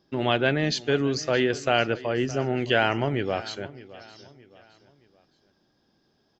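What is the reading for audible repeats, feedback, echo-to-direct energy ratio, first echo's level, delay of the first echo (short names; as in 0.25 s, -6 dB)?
3, 39%, -18.0 dB, -18.5 dB, 0.617 s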